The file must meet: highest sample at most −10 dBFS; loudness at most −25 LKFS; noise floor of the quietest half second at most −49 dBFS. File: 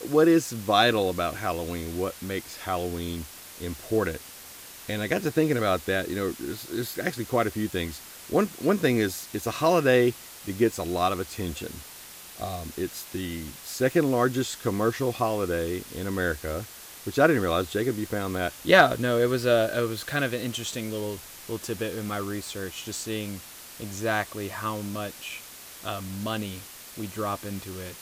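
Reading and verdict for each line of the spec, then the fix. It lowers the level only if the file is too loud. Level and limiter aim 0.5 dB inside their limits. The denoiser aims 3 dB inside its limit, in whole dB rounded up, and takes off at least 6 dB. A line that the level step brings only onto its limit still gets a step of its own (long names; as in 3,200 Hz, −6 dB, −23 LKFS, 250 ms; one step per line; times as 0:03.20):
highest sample −5.5 dBFS: out of spec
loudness −27.0 LKFS: in spec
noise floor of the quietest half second −45 dBFS: out of spec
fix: broadband denoise 7 dB, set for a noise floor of −45 dBFS
brickwall limiter −10.5 dBFS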